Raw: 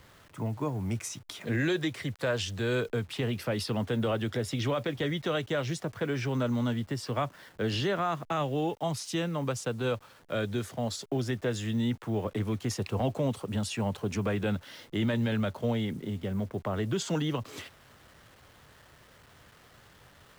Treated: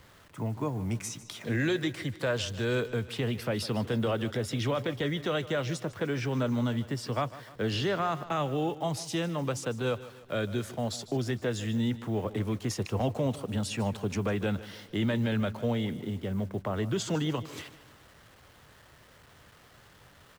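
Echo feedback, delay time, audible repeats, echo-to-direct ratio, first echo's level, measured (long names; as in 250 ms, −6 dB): 48%, 151 ms, 3, −15.5 dB, −16.5 dB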